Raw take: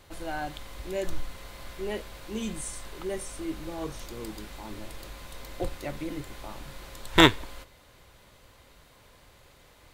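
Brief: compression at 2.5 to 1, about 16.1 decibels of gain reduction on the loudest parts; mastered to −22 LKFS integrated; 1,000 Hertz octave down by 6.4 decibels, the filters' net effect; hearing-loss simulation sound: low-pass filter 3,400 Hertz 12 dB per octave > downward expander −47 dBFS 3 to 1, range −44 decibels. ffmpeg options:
ffmpeg -i in.wav -af "equalizer=frequency=1000:width_type=o:gain=-8,acompressor=threshold=-38dB:ratio=2.5,lowpass=3400,agate=range=-44dB:threshold=-47dB:ratio=3,volume=21dB" out.wav

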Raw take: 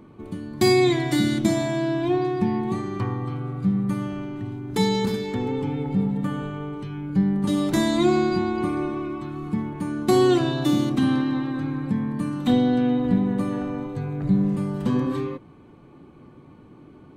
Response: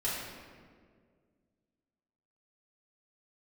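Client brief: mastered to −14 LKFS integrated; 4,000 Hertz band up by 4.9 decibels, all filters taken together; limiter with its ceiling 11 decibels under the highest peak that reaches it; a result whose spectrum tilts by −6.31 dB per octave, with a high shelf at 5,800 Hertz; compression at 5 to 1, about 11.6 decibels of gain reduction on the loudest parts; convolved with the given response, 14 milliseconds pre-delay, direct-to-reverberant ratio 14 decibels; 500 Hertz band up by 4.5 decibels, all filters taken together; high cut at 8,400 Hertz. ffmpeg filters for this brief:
-filter_complex "[0:a]lowpass=8400,equalizer=frequency=500:width_type=o:gain=7,equalizer=frequency=4000:width_type=o:gain=4.5,highshelf=frequency=5800:gain=3.5,acompressor=threshold=-24dB:ratio=5,alimiter=limit=-22.5dB:level=0:latency=1,asplit=2[link_01][link_02];[1:a]atrim=start_sample=2205,adelay=14[link_03];[link_02][link_03]afir=irnorm=-1:irlink=0,volume=-20.5dB[link_04];[link_01][link_04]amix=inputs=2:normalize=0,volume=16.5dB"

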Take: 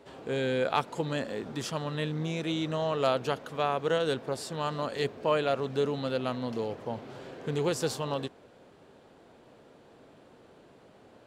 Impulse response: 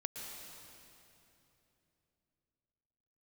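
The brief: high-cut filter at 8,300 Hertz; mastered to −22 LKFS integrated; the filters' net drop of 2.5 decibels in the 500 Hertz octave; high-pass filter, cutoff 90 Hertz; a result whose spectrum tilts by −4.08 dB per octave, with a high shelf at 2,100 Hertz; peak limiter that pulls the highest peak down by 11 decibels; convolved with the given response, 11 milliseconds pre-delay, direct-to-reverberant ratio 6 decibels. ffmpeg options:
-filter_complex "[0:a]highpass=90,lowpass=8300,equalizer=frequency=500:width_type=o:gain=-3.5,highshelf=frequency=2100:gain=7,alimiter=limit=-19.5dB:level=0:latency=1,asplit=2[link_01][link_02];[1:a]atrim=start_sample=2205,adelay=11[link_03];[link_02][link_03]afir=irnorm=-1:irlink=0,volume=-5.5dB[link_04];[link_01][link_04]amix=inputs=2:normalize=0,volume=10.5dB"

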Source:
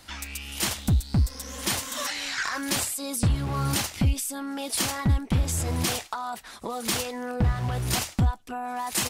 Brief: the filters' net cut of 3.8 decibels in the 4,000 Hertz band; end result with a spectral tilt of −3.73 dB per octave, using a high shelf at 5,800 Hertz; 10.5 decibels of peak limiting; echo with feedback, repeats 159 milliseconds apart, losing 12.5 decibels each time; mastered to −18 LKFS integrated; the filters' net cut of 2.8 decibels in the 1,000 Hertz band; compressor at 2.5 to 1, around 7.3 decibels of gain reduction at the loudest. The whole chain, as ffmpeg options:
ffmpeg -i in.wav -af "equalizer=frequency=1000:width_type=o:gain=-3.5,equalizer=frequency=4000:width_type=o:gain=-8,highshelf=frequency=5800:gain=7,acompressor=threshold=-29dB:ratio=2.5,alimiter=level_in=1dB:limit=-24dB:level=0:latency=1,volume=-1dB,aecho=1:1:159|318|477:0.237|0.0569|0.0137,volume=16dB" out.wav

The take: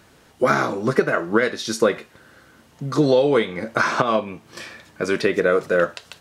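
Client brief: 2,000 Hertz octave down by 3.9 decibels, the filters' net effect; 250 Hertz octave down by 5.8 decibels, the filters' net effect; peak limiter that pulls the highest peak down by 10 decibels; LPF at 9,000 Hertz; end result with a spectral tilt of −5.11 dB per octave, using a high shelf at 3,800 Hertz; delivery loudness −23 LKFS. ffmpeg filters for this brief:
ffmpeg -i in.wav -af "lowpass=9000,equalizer=frequency=250:width_type=o:gain=-8,equalizer=frequency=2000:width_type=o:gain=-4.5,highshelf=frequency=3800:gain=-5,volume=3.5dB,alimiter=limit=-11.5dB:level=0:latency=1" out.wav

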